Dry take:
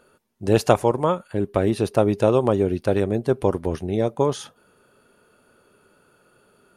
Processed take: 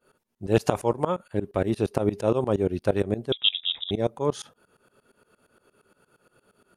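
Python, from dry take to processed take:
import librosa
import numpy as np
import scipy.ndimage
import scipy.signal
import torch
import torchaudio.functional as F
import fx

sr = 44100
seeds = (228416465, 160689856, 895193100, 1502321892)

y = fx.tremolo_shape(x, sr, shape='saw_up', hz=8.6, depth_pct=95)
y = fx.freq_invert(y, sr, carrier_hz=3700, at=(3.32, 3.91))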